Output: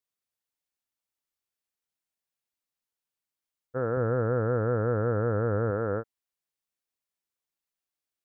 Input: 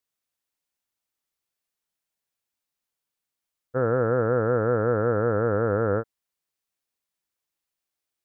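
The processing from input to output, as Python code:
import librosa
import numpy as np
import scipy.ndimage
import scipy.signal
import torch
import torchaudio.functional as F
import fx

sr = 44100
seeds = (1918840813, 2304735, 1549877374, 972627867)

y = fx.low_shelf(x, sr, hz=110.0, db=11.5, at=(3.97, 5.71))
y = y * 10.0 ** (-5.5 / 20.0)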